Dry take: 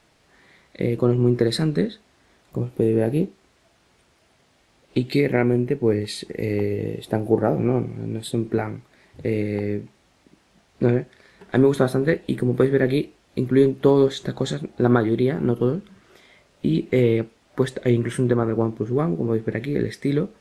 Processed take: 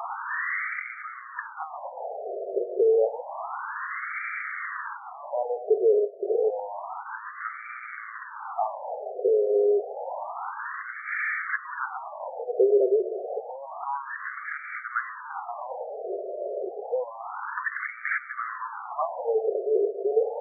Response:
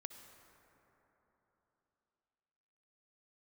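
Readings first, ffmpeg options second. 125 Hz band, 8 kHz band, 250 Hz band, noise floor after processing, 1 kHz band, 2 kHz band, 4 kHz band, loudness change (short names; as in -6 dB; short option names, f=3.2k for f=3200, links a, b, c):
under -40 dB, under -35 dB, under -15 dB, -41 dBFS, +3.0 dB, +3.5 dB, under -40 dB, -6.5 dB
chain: -af "aeval=exprs='val(0)+0.5*0.0562*sgn(val(0))':c=same,alimiter=limit=-14dB:level=0:latency=1:release=107,afftfilt=real='re*between(b*sr/1024,490*pow(1700/490,0.5+0.5*sin(2*PI*0.29*pts/sr))/1.41,490*pow(1700/490,0.5+0.5*sin(2*PI*0.29*pts/sr))*1.41)':imag='im*between(b*sr/1024,490*pow(1700/490,0.5+0.5*sin(2*PI*0.29*pts/sr))/1.41,490*pow(1700/490,0.5+0.5*sin(2*PI*0.29*pts/sr))*1.41)':win_size=1024:overlap=0.75,volume=6dB"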